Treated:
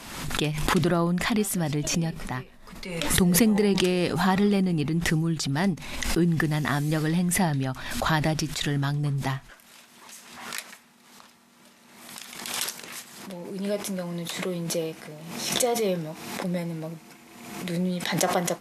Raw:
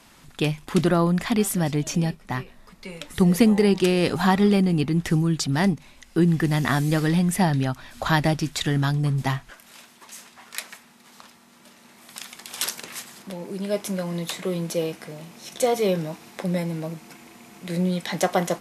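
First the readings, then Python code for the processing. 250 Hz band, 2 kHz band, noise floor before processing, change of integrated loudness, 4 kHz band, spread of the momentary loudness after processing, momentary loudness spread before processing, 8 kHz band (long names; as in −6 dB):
−3.5 dB, −0.5 dB, −53 dBFS, −3.0 dB, +0.5 dB, 16 LU, 19 LU, +2.5 dB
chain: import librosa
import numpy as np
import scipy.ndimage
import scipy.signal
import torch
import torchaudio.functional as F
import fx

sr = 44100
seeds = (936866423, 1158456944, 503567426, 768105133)

y = fx.pre_swell(x, sr, db_per_s=49.0)
y = y * librosa.db_to_amplitude(-4.0)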